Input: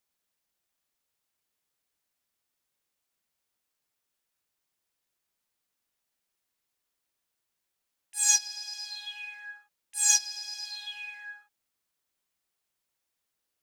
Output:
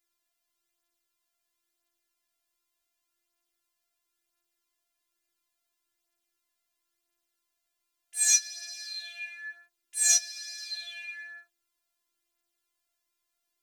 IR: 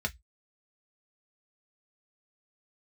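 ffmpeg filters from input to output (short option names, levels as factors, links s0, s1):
-af "afftfilt=real='hypot(re,im)*cos(PI*b)':imag='0':win_size=512:overlap=0.75,flanger=delay=9.1:depth=7.6:regen=10:speed=0.19:shape=triangular,volume=2.51"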